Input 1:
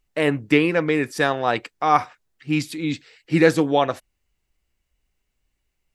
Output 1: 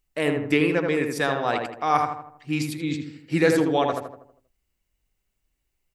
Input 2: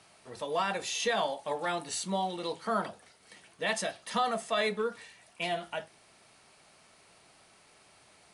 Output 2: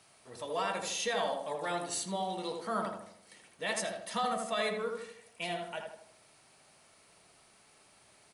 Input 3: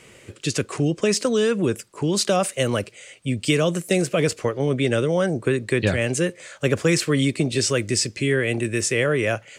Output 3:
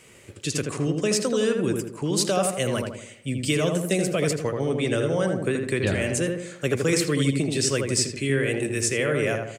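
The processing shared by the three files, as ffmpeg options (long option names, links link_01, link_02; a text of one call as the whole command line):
ffmpeg -i in.wav -filter_complex "[0:a]highshelf=frequency=8000:gain=8.5,asplit=2[link_01][link_02];[link_02]adelay=80,lowpass=frequency=1600:poles=1,volume=-3dB,asplit=2[link_03][link_04];[link_04]adelay=80,lowpass=frequency=1600:poles=1,volume=0.5,asplit=2[link_05][link_06];[link_06]adelay=80,lowpass=frequency=1600:poles=1,volume=0.5,asplit=2[link_07][link_08];[link_08]adelay=80,lowpass=frequency=1600:poles=1,volume=0.5,asplit=2[link_09][link_10];[link_10]adelay=80,lowpass=frequency=1600:poles=1,volume=0.5,asplit=2[link_11][link_12];[link_12]adelay=80,lowpass=frequency=1600:poles=1,volume=0.5,asplit=2[link_13][link_14];[link_14]adelay=80,lowpass=frequency=1600:poles=1,volume=0.5[link_15];[link_01][link_03][link_05][link_07][link_09][link_11][link_13][link_15]amix=inputs=8:normalize=0,volume=-4.5dB" out.wav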